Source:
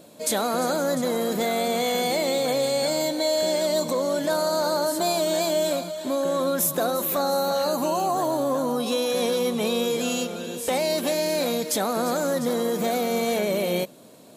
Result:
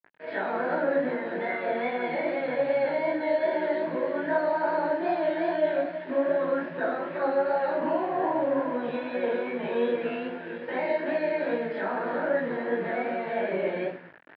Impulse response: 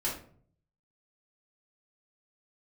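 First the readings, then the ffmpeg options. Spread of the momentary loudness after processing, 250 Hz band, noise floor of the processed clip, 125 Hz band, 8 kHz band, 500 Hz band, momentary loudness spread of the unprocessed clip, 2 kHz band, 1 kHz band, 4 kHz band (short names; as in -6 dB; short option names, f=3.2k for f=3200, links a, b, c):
5 LU, -4.5 dB, -40 dBFS, -8.5 dB, under -40 dB, -3.0 dB, 2 LU, +1.0 dB, -3.0 dB, -19.0 dB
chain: -filter_complex "[1:a]atrim=start_sample=2205,afade=t=out:st=0.41:d=0.01,atrim=end_sample=18522[a];[0:a][a]afir=irnorm=-1:irlink=0,aresample=11025,acrusher=bits=5:mix=0:aa=0.000001,aresample=44100,flanger=delay=15.5:depth=6.2:speed=2.5,areverse,acompressor=mode=upward:threshold=-37dB:ratio=2.5,areverse,aeval=exprs='sgn(val(0))*max(abs(val(0))-0.00668,0)':c=same,highpass=180,equalizer=f=220:t=q:w=4:g=-10,equalizer=f=550:t=q:w=4:g=-4,equalizer=f=1.2k:t=q:w=4:g=-6,equalizer=f=1.7k:t=q:w=4:g=10,lowpass=f=2.3k:w=0.5412,lowpass=f=2.3k:w=1.3066,volume=-4dB"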